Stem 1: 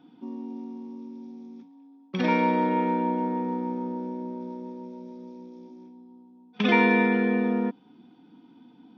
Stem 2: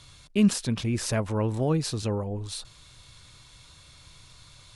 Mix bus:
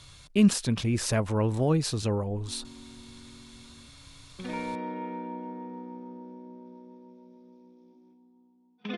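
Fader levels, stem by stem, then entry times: -11.5, +0.5 dB; 2.25, 0.00 s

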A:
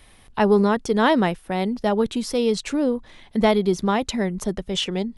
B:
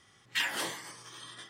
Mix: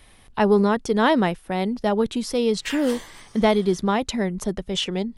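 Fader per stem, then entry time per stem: -0.5, -1.5 dB; 0.00, 2.30 s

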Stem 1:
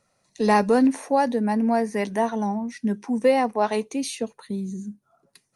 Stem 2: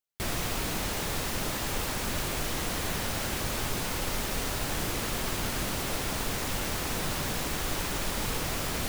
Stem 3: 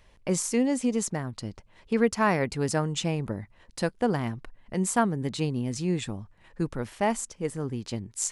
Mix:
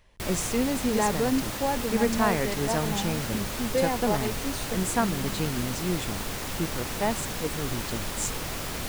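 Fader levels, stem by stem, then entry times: -7.5, -1.5, -2.0 dB; 0.50, 0.00, 0.00 s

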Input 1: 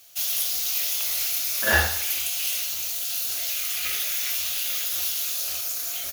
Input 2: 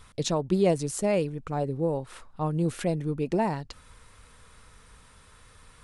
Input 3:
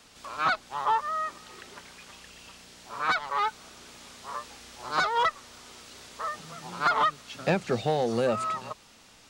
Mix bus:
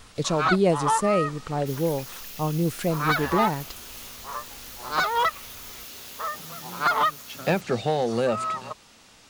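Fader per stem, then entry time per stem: -16.0, +2.0, +2.0 dB; 1.50, 0.00, 0.00 s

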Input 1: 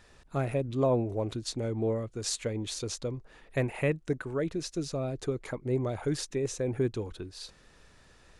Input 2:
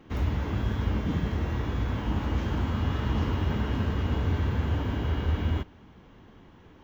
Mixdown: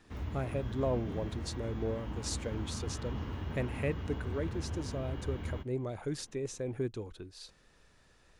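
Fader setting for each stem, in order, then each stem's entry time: -6.0, -11.5 dB; 0.00, 0.00 s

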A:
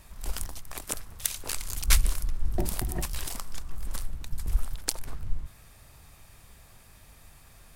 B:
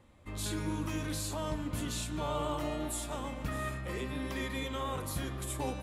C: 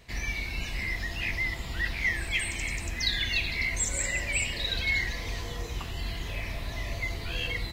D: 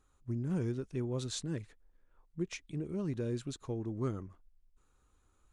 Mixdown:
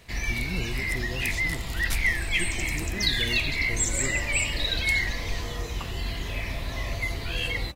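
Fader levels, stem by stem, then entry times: -9.0, -10.0, +3.0, -1.0 dB; 0.00, 1.95, 0.00, 0.00 s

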